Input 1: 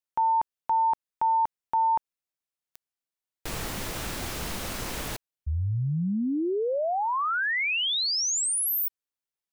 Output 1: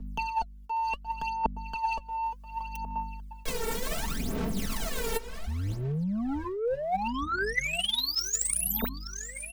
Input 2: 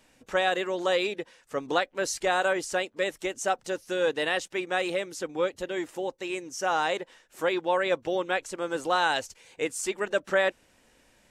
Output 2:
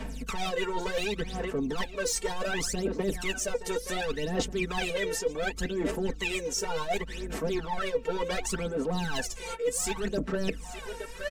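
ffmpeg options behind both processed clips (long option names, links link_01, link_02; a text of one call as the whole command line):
ffmpeg -i in.wav -filter_complex "[0:a]asoftclip=type=tanh:threshold=-28dB,aeval=exprs='val(0)+0.000891*(sin(2*PI*50*n/s)+sin(2*PI*2*50*n/s)/2+sin(2*PI*3*50*n/s)/3+sin(2*PI*4*50*n/s)/4+sin(2*PI*5*50*n/s)/5)':channel_layout=same,aecho=1:1:4.5:0.92,asplit=2[link_01][link_02];[link_02]adelay=871,lowpass=frequency=3900:poles=1,volume=-19dB,asplit=2[link_03][link_04];[link_04]adelay=871,lowpass=frequency=3900:poles=1,volume=0.38,asplit=2[link_05][link_06];[link_06]adelay=871,lowpass=frequency=3900:poles=1,volume=0.38[link_07];[link_03][link_05][link_07]amix=inputs=3:normalize=0[link_08];[link_01][link_08]amix=inputs=2:normalize=0,acrossover=split=110|450[link_09][link_10][link_11];[link_09]acompressor=threshold=-45dB:ratio=3[link_12];[link_10]acompressor=threshold=-35dB:ratio=3[link_13];[link_11]acompressor=threshold=-47dB:ratio=2[link_14];[link_12][link_13][link_14]amix=inputs=3:normalize=0,aphaser=in_gain=1:out_gain=1:delay=2.2:decay=0.8:speed=0.68:type=sinusoidal,areverse,acompressor=threshold=-40dB:ratio=16:attack=67:release=94:knee=1:detection=peak,areverse,volume=8.5dB" out.wav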